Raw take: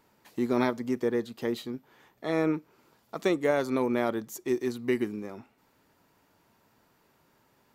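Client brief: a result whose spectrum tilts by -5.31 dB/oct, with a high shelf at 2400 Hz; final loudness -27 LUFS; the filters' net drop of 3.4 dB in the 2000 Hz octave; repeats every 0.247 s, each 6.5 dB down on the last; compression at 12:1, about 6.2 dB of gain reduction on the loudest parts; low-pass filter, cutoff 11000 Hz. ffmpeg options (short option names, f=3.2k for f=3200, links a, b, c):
-af "lowpass=11k,equalizer=f=2k:t=o:g=-6,highshelf=f=2.4k:g=4,acompressor=threshold=-27dB:ratio=12,aecho=1:1:247|494|741|988|1235|1482:0.473|0.222|0.105|0.0491|0.0231|0.0109,volume=7.5dB"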